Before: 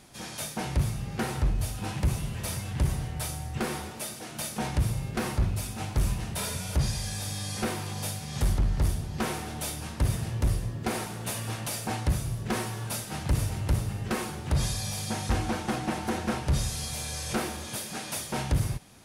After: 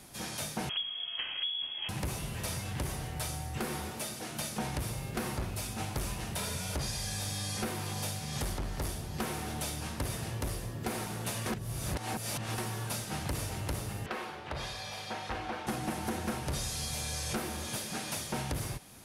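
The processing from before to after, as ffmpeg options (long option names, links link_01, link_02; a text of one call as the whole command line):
ffmpeg -i in.wav -filter_complex "[0:a]asettb=1/sr,asplit=3[link_01][link_02][link_03];[link_01]atrim=end=0.694[link_04];[link_02]atrim=start=0.69:end=1.89,asetpts=PTS-STARTPTS,afade=type=in:duration=0.004:curve=qsin,afade=type=out:start_time=1.196:duration=0.004:curve=qsin,lowpass=frequency=2900:width_type=q:width=0.5098,lowpass=frequency=2900:width_type=q:width=0.6013,lowpass=frequency=2900:width_type=q:width=0.9,lowpass=frequency=2900:width_type=q:width=2.563,afreqshift=-3400[link_05];[link_03]atrim=start=1.886[link_06];[link_04][link_05]acrossfade=duration=0.004:curve1=hsin:curve2=qsin[link_07];[link_07][link_06]acrossfade=duration=0.004:curve1=qsin:curve2=hsin,asettb=1/sr,asplit=3[link_08][link_09][link_10];[link_08]atrim=end=14.064[link_11];[link_09]atrim=start=14.06:end=15.67,asetpts=PTS-STARTPTS,afade=type=in:duration=0.004:curve=qsin,afade=type=out:start_time=1.606:duration=0.004:curve=qsin,acrossover=split=390 4300:gain=0.158 1 0.0631[link_12][link_13][link_14];[link_12][link_13][link_14]amix=inputs=3:normalize=0[link_15];[link_10]atrim=start=15.666[link_16];[link_11][link_15]acrossfade=duration=0.004:curve1=hsin:curve2=qsin[link_17];[link_17][link_16]acrossfade=duration=0.004:curve1=qsin:curve2=hsin,asplit=3[link_18][link_19][link_20];[link_18]atrim=end=11.462[link_21];[link_19]atrim=start=11.458:end=12.582,asetpts=PTS-STARTPTS,areverse[link_22];[link_20]atrim=start=12.578[link_23];[link_21][link_22]acrossfade=duration=0.004:curve1=hsin:curve2=hsin[link_24];[link_24][link_23]acrossfade=duration=0.004:curve1=hsin:curve2=hsin,equalizer=frequency=13000:width=0.98:gain=8.5,acrossover=split=260|8000[link_25][link_26][link_27];[link_25]acompressor=threshold=-37dB:ratio=4[link_28];[link_26]acompressor=threshold=-35dB:ratio=4[link_29];[link_27]acompressor=threshold=-48dB:ratio=4[link_30];[link_28][link_29][link_30]amix=inputs=3:normalize=0" out.wav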